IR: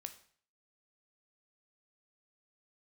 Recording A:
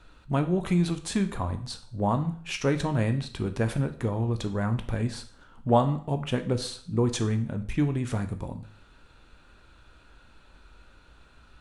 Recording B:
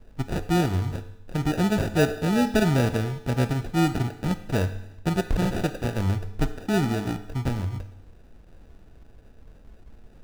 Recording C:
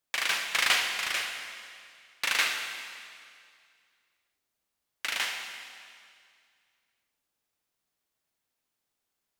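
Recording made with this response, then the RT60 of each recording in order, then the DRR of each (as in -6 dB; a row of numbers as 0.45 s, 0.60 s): A; 0.50 s, 0.90 s, 2.2 s; 7.5 dB, 9.5 dB, 4.0 dB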